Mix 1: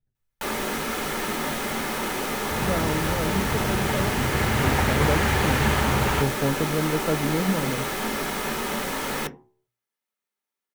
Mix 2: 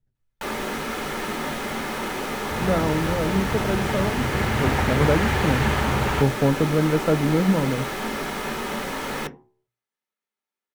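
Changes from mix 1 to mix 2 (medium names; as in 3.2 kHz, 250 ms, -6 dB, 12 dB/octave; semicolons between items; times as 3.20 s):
speech +5.0 dB; master: add treble shelf 6.3 kHz -7.5 dB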